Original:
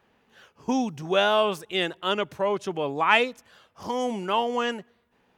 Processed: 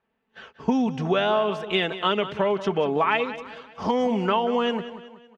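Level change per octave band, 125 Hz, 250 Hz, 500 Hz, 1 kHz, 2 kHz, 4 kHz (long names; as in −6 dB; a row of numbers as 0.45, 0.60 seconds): +6.5, +4.5, +2.5, +0.5, −2.0, −0.5 decibels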